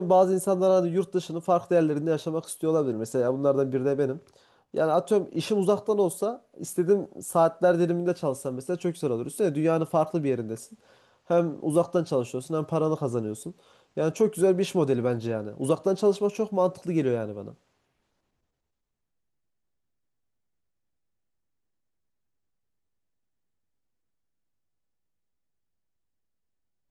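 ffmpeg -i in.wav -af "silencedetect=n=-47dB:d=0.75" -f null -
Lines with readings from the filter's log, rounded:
silence_start: 17.54
silence_end: 26.90 | silence_duration: 9.36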